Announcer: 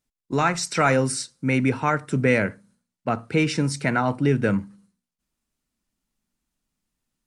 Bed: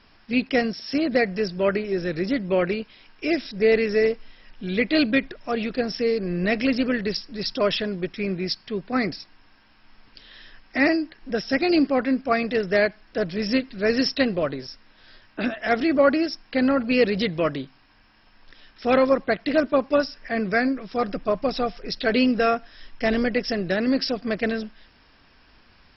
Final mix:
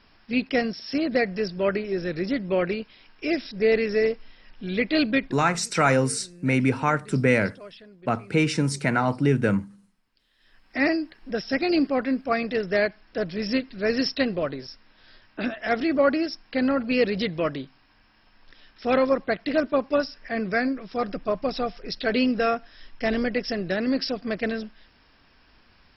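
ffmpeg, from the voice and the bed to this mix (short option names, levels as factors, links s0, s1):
-filter_complex "[0:a]adelay=5000,volume=0.944[s0];[1:a]volume=7.08,afade=t=out:st=5.24:d=0.23:silence=0.105925,afade=t=in:st=10.38:d=0.46:silence=0.112202[s1];[s0][s1]amix=inputs=2:normalize=0"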